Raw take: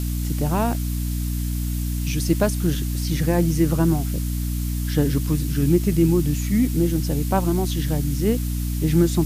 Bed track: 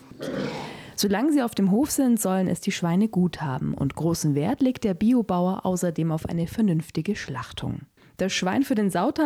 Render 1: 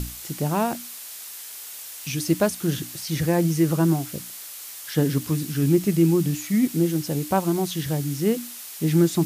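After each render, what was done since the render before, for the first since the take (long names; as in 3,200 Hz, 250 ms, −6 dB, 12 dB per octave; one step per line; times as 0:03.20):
mains-hum notches 60/120/180/240/300 Hz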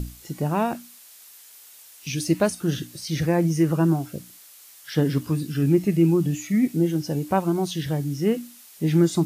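noise reduction from a noise print 10 dB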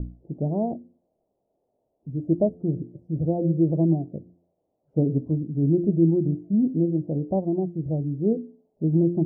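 elliptic low-pass filter 660 Hz, stop band 60 dB
hum removal 86.85 Hz, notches 6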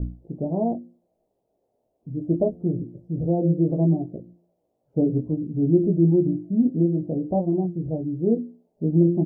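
double-tracking delay 17 ms −3 dB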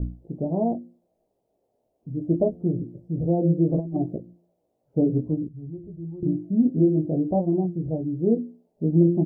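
0:03.74–0:04.18: compressor whose output falls as the input rises −24 dBFS, ratio −0.5
0:05.48–0:06.23: drawn EQ curve 100 Hz 0 dB, 200 Hz −22 dB, 650 Hz −20 dB, 1,300 Hz −7 dB
0:06.75–0:07.32: double-tracking delay 20 ms −2.5 dB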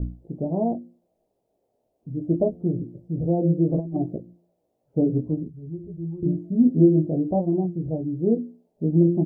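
0:05.37–0:07.10: double-tracking delay 12 ms −5 dB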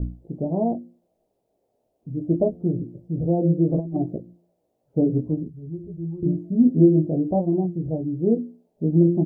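level +1 dB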